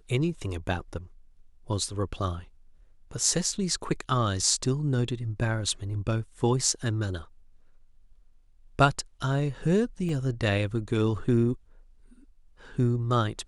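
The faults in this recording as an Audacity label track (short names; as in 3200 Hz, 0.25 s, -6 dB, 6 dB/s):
10.090000	10.090000	gap 2.5 ms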